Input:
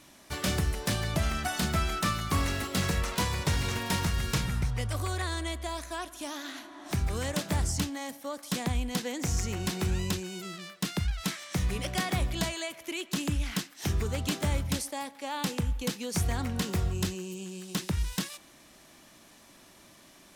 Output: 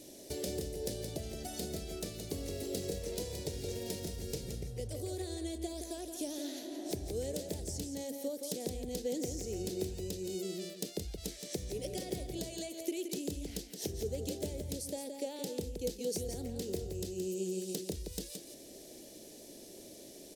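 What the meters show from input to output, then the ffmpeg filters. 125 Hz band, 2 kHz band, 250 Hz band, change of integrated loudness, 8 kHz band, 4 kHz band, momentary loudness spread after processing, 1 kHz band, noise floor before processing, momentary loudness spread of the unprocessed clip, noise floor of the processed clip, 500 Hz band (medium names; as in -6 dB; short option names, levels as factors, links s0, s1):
-12.5 dB, -19.0 dB, -6.0 dB, -8.0 dB, -5.5 dB, -9.5 dB, 5 LU, -17.0 dB, -56 dBFS, 8 LU, -52 dBFS, 0.0 dB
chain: -af "acompressor=threshold=0.01:ratio=6,firequalizer=gain_entry='entry(170,0);entry(440,15);entry(1100,-20);entry(1800,-9);entry(4500,4);entry(12000,6)':delay=0.05:min_phase=1,aecho=1:1:171:0.447,volume=0.891"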